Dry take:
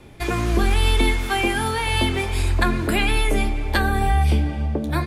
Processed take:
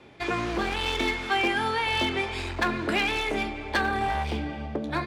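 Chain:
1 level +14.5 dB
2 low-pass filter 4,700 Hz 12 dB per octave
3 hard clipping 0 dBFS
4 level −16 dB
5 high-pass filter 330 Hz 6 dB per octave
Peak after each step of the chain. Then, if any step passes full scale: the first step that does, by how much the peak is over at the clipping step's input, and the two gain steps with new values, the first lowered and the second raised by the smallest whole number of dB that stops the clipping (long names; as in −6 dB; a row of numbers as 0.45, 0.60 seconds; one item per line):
+8.0, +7.5, 0.0, −16.0, −12.0 dBFS
step 1, 7.5 dB
step 1 +6.5 dB, step 4 −8 dB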